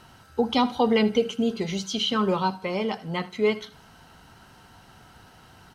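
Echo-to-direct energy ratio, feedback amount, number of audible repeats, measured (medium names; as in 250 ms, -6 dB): -18.5 dB, 33%, 2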